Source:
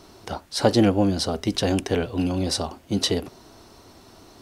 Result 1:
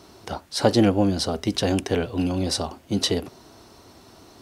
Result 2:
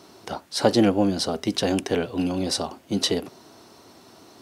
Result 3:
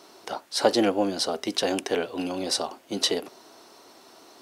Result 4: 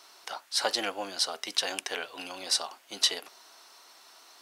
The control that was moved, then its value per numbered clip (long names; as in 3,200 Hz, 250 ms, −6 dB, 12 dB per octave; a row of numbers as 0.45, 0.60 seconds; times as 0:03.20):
high-pass filter, corner frequency: 46, 140, 360, 1,100 Hertz